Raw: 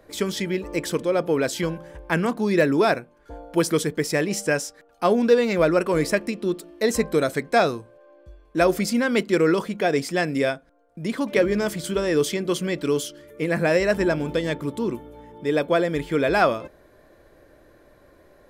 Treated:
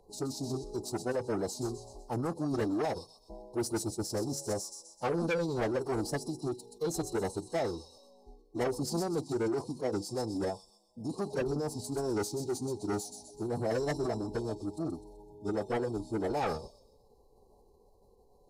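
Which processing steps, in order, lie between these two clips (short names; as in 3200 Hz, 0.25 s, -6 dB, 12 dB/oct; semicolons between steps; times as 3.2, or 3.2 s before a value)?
Chebyshev band-stop 1200–4100 Hz, order 4; on a send: thin delay 0.127 s, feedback 42%, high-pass 2800 Hz, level -5.5 dB; on the sum: soft clip -19 dBFS, distortion -12 dB; formant-preserving pitch shift -6 st; gain -7 dB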